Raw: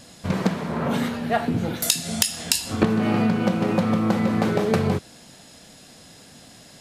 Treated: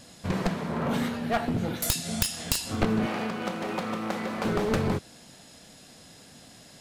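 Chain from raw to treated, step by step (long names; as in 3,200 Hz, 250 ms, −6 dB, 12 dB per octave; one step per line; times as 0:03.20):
wavefolder on the positive side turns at −18.5 dBFS
0:03.06–0:04.45: high-pass filter 510 Hz 6 dB per octave
level −3.5 dB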